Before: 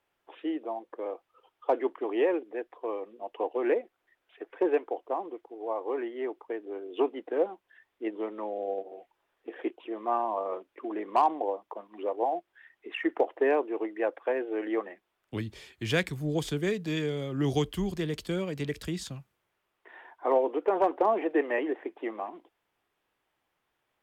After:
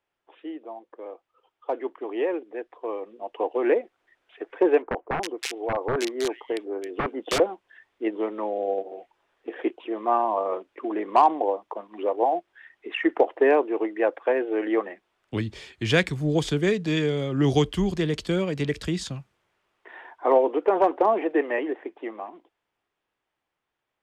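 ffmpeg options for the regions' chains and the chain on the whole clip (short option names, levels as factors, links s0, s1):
-filter_complex "[0:a]asettb=1/sr,asplit=3[s0][s1][s2];[s0]atrim=end=4.824[s3];[s1]atrim=start=4.82:end=7.4,asetpts=PTS-STARTPTS,afade=t=in:d=0.004:c=qsin,afade=t=out:st=2.576:d=0.004:c=qsin,aeval=exprs='(mod(15.8*val(0)+1,2)-1)/15.8':c=same,acrossover=split=2000[s4][s5];[s5]adelay=320[s6];[s4][s6]amix=inputs=2:normalize=0,atrim=end_sample=113778[s7];[s2]atrim=start=7.396[s8];[s3][s7]acrossfade=d=0.004:c1=hsin:c2=qsin[s9];[s9][s8]acrossfade=d=0.004:c1=qsin:c2=hsin,lowpass=8000,dynaudnorm=f=350:g=17:m=3.76,volume=0.631"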